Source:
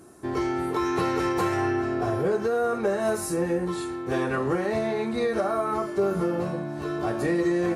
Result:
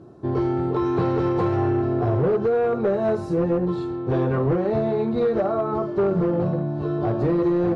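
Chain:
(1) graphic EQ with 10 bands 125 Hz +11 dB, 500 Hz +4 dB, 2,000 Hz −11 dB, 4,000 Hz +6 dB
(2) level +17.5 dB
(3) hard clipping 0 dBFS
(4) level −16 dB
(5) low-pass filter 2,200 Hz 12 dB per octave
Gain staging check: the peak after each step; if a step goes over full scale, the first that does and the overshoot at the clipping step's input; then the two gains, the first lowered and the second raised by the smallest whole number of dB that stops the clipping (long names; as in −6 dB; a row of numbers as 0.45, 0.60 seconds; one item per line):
−10.5, +7.0, 0.0, −16.0, −15.5 dBFS
step 2, 7.0 dB
step 2 +10.5 dB, step 4 −9 dB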